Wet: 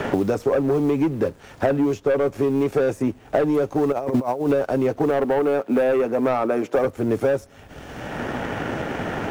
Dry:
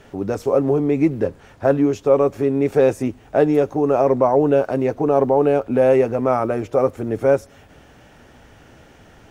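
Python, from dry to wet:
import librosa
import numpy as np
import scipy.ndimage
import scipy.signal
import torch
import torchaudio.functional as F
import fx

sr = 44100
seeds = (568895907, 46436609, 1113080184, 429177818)

y = fx.law_mismatch(x, sr, coded='A')
y = fx.over_compress(y, sr, threshold_db=-23.0, ratio=-0.5, at=(3.92, 4.5))
y = fx.highpass(y, sr, hz=190.0, slope=24, at=(5.1, 6.85))
y = 10.0 ** (-14.0 / 20.0) * np.tanh(y / 10.0 ** (-14.0 / 20.0))
y = fx.band_squash(y, sr, depth_pct=100)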